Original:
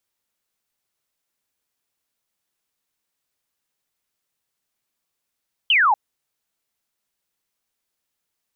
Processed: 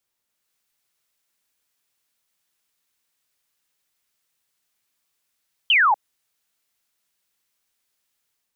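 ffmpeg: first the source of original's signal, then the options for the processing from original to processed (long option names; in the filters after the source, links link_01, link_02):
-f lavfi -i "aevalsrc='0.224*clip(t/0.002,0,1)*clip((0.24-t)/0.002,0,1)*sin(2*PI*3200*0.24/log(780/3200)*(exp(log(780/3200)*t/0.24)-1))':duration=0.24:sample_rate=44100"
-filter_complex "[0:a]acrossover=split=250|560|1200[link_01][link_02][link_03][link_04];[link_04]dynaudnorm=framelen=260:gausssize=3:maxgain=5dB[link_05];[link_01][link_02][link_03][link_05]amix=inputs=4:normalize=0,alimiter=limit=-13dB:level=0:latency=1:release=248"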